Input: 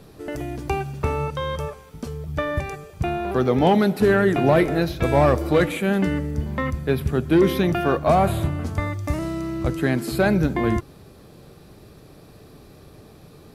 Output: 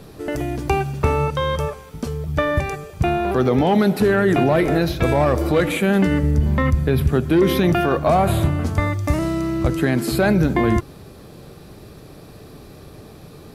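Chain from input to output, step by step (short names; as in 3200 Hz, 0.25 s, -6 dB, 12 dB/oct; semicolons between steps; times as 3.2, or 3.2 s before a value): 6.23–7.09 low shelf 130 Hz +9 dB; limiter -13.5 dBFS, peak gain reduction 8.5 dB; gain +5.5 dB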